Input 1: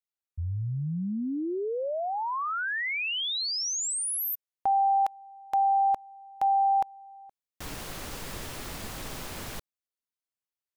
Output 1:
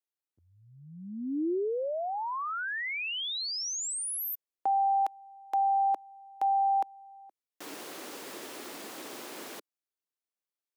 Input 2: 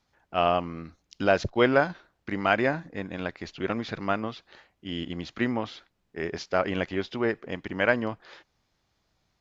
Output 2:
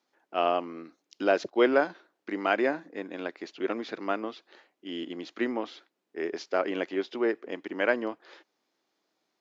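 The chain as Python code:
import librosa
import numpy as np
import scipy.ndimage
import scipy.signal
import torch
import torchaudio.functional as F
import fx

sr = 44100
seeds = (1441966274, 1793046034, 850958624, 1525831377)

y = fx.ladder_highpass(x, sr, hz=260.0, resonance_pct=40)
y = y * librosa.db_to_amplitude(4.5)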